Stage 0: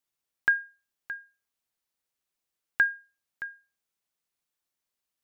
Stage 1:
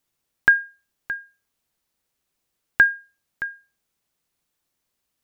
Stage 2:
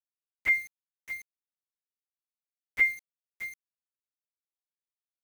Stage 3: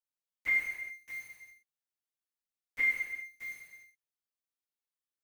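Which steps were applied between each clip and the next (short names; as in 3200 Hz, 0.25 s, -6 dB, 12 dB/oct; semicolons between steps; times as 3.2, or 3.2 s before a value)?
low shelf 410 Hz +7 dB; gain +7.5 dB
inharmonic rescaling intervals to 114%; bit-crush 7-bit; gain -6 dB
non-linear reverb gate 0.43 s falling, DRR -4.5 dB; gain -8 dB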